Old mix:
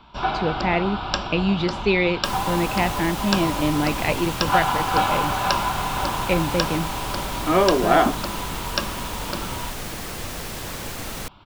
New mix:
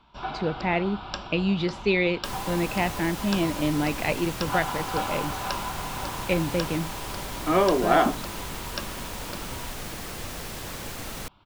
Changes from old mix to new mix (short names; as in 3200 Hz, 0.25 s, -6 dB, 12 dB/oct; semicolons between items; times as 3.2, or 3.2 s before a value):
speech -3.0 dB; first sound -9.5 dB; second sound -4.0 dB